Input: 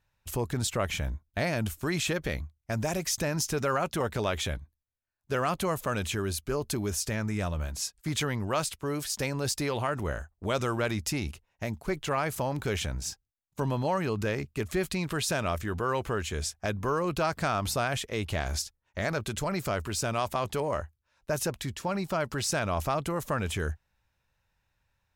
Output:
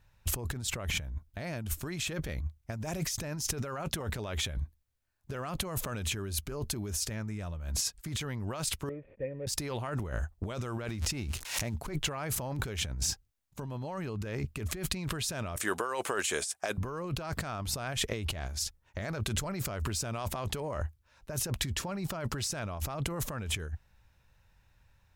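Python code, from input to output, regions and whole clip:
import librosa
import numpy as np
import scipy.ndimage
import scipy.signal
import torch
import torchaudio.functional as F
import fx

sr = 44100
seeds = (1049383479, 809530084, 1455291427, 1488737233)

y = fx.chain(x, sr, fx.median_filter(points=25),
    fx.formant_cascade(vowel='e'),
    fx.peak_eq(hz=880.0, db=-8.5, octaves=1.5), at=(8.89, 9.47))
y = fx.chain(y, sr, fx.crossing_spikes(level_db=-31.5),
    fx.air_absorb(metres=53.0),
    fx.pre_swell(db_per_s=110.0), at=(10.88, 11.74))
y = fx.chain(y, sr, fx.highpass(hz=470.0, slope=12),
    fx.peak_eq(hz=8900.0, db=11.0, octaves=0.63), at=(15.56, 16.78))
y = fx.low_shelf(y, sr, hz=160.0, db=7.0)
y = fx.over_compress(y, sr, threshold_db=-35.0, ratio=-1.0)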